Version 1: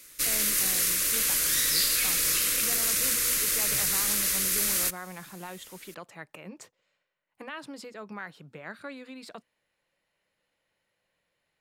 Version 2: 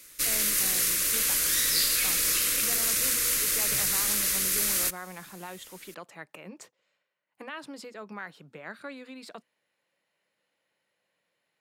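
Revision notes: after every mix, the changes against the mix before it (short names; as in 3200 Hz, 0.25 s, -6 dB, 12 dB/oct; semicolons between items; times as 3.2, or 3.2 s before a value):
speech: add HPF 160 Hz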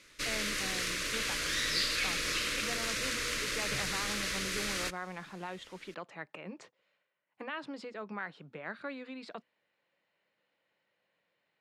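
master: add LPF 4000 Hz 12 dB/oct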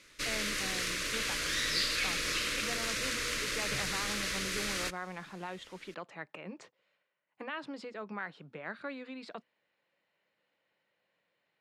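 none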